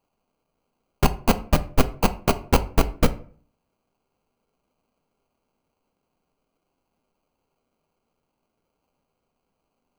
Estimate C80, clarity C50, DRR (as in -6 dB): 21.5 dB, 17.0 dB, 10.0 dB